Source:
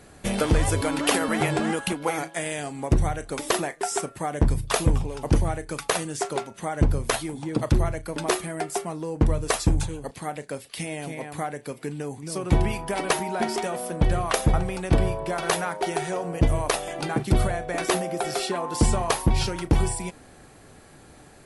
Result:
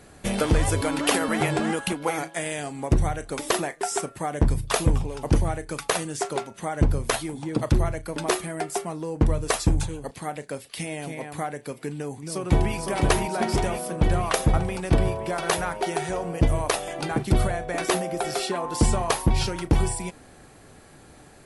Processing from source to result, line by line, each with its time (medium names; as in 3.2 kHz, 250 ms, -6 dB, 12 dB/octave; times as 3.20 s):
12.02–12.76 s: echo throw 510 ms, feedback 70%, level -3 dB